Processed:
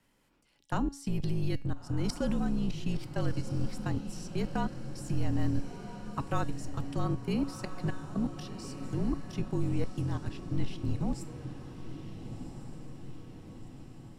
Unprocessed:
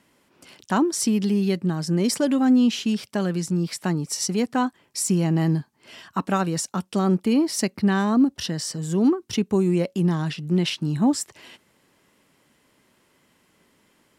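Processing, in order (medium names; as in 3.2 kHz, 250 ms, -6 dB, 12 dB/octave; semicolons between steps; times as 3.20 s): octave divider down 2 oct, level +2 dB; 7.06–8.75 s: high-pass 210 Hz 6 dB/octave; level held to a coarse grid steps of 21 dB; frequency shift -43 Hz; feedback comb 280 Hz, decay 0.51 s, harmonics all, mix 60%; on a send: echo that smears into a reverb 1414 ms, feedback 58%, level -10 dB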